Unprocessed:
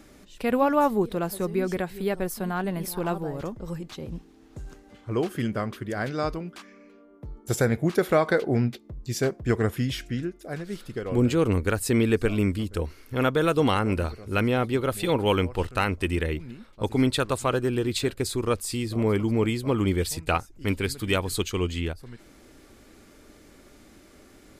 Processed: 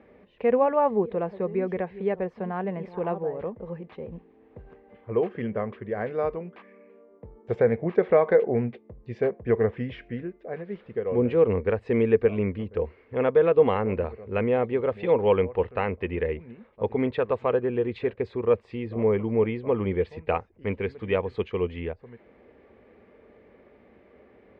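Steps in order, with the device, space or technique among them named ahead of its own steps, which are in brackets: bass cabinet (speaker cabinet 86–2200 Hz, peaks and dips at 87 Hz -3 dB, 140 Hz -10 dB, 300 Hz -10 dB, 470 Hz +8 dB, 1400 Hz -10 dB)

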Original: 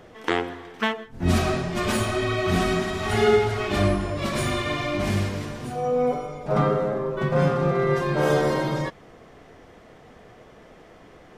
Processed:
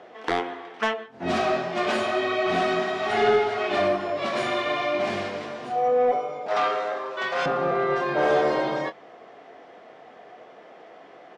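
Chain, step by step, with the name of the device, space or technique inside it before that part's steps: intercom (BPF 340–4200 Hz; bell 710 Hz +7 dB 0.34 oct; soft clip -14 dBFS, distortion -19 dB; doubler 22 ms -10.5 dB); 6.48–7.46 weighting filter ITU-R 468; gain +1 dB

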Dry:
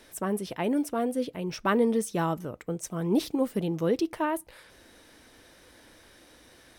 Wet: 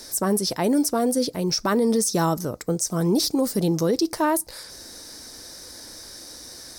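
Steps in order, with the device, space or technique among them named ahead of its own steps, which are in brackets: over-bright horn tweeter (resonant high shelf 3800 Hz +9 dB, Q 3; limiter -21.5 dBFS, peak gain reduction 11 dB); gain +8 dB

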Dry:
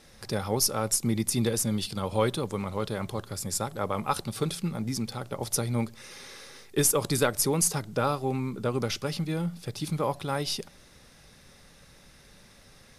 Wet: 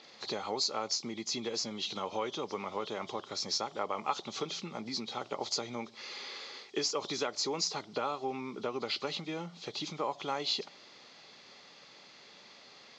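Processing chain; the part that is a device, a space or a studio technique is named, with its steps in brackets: hearing aid with frequency lowering (nonlinear frequency compression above 2900 Hz 1.5:1; compressor 4:1, threshold -31 dBFS, peak gain reduction 10.5 dB; speaker cabinet 400–5400 Hz, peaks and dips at 530 Hz -5 dB, 1600 Hz -8 dB, 5000 Hz +4 dB); gain +4 dB

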